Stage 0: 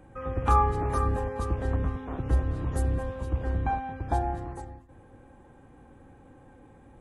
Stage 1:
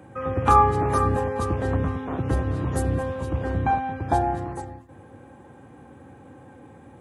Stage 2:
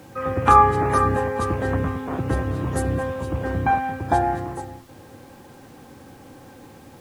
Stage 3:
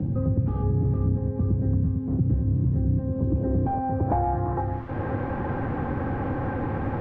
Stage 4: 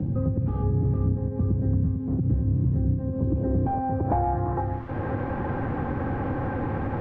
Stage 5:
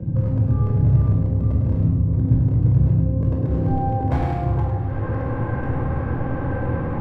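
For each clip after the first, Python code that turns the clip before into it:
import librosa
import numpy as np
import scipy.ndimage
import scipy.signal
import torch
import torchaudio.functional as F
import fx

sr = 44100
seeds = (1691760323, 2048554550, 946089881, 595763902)

y1 = scipy.signal.sosfilt(scipy.signal.butter(4, 83.0, 'highpass', fs=sr, output='sos'), x)
y1 = y1 * 10.0 ** (7.0 / 20.0)
y2 = fx.dynamic_eq(y1, sr, hz=1800.0, q=1.5, threshold_db=-39.0, ratio=4.0, max_db=5)
y2 = fx.dmg_noise_colour(y2, sr, seeds[0], colour='pink', level_db=-55.0)
y2 = fx.low_shelf(y2, sr, hz=62.0, db=-7.0)
y2 = y2 * 10.0 ** (2.0 / 20.0)
y3 = 10.0 ** (-16.5 / 20.0) * np.tanh(y2 / 10.0 ** (-16.5 / 20.0))
y3 = fx.filter_sweep_lowpass(y3, sr, from_hz=180.0, to_hz=1700.0, start_s=2.88, end_s=4.83, q=1.1)
y3 = fx.band_squash(y3, sr, depth_pct=100)
y3 = y3 * 10.0 ** (3.5 / 20.0)
y4 = fx.end_taper(y3, sr, db_per_s=110.0)
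y5 = 10.0 ** (-17.5 / 20.0) * (np.abs((y4 / 10.0 ** (-17.5 / 20.0) + 3.0) % 4.0 - 2.0) - 1.0)
y5 = fx.echo_feedback(y5, sr, ms=104, feedback_pct=52, wet_db=-7)
y5 = fx.room_shoebox(y5, sr, seeds[1], volume_m3=1900.0, walls='furnished', distance_m=5.2)
y5 = y5 * 10.0 ** (-5.0 / 20.0)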